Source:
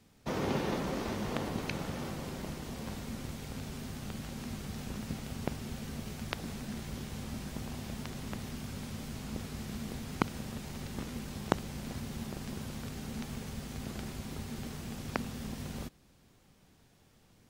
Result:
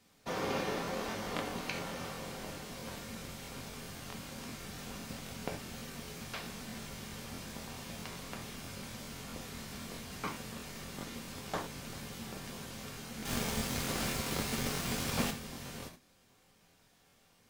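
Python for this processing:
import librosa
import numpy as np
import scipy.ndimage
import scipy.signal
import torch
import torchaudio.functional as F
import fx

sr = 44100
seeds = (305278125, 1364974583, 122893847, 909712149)

y = fx.low_shelf(x, sr, hz=340.0, db=-9.0)
y = fx.leveller(y, sr, passes=3, at=(13.25, 15.3))
y = fx.rev_gated(y, sr, seeds[0], gate_ms=130, shape='falling', drr_db=0.5)
y = fx.buffer_crackle(y, sr, first_s=0.7, period_s=0.13, block=1024, kind='repeat')
y = y * librosa.db_to_amplitude(-1.0)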